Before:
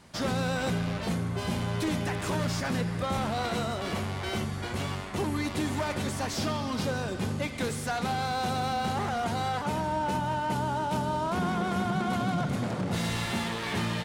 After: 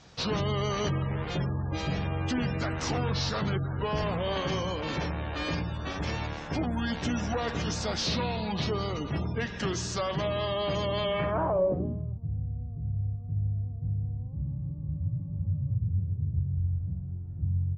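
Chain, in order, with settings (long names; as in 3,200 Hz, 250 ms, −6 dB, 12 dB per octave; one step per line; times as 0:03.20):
gate on every frequency bin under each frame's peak −30 dB strong
low-pass filter sweep 7,100 Hz → 120 Hz, 0:08.61–0:09.65
speed change −21%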